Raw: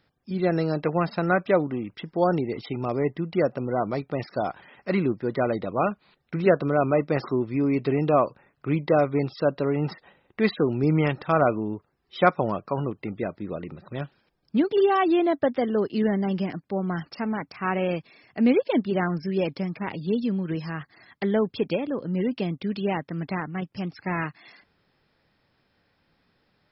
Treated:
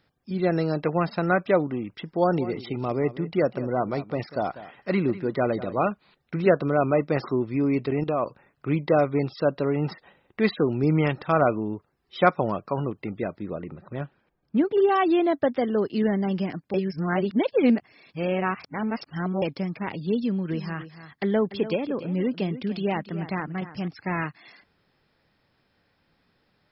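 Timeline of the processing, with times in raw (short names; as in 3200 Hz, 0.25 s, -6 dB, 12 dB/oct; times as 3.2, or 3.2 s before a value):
2.02–5.89 echo 0.194 s -15.5 dB
7.86–8.26 level quantiser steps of 12 dB
13.5–14.89 LPF 2200 Hz
16.74–19.42 reverse
20.21–23.88 echo 0.291 s -13.5 dB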